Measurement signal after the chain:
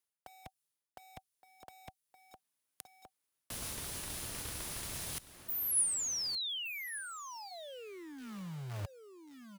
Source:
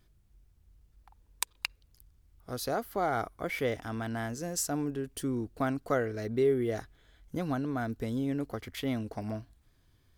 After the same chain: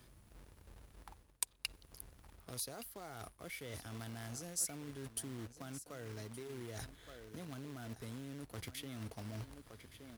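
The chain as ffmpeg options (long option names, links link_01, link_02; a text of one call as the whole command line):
ffmpeg -i in.wav -filter_complex "[0:a]areverse,acompressor=threshold=-42dB:ratio=20,areverse,aecho=1:1:1169:0.178,acrossover=split=130|3000[link_01][link_02][link_03];[link_02]acompressor=threshold=-58dB:ratio=3[link_04];[link_01][link_04][link_03]amix=inputs=3:normalize=0,equalizer=frequency=10000:width=4.2:gain=9.5,acrossover=split=1900[link_05][link_06];[link_05]acrusher=bits=2:mode=log:mix=0:aa=0.000001[link_07];[link_07][link_06]amix=inputs=2:normalize=0,highpass=frequency=85:poles=1,bandreject=frequency=760:width=24,volume=7dB" out.wav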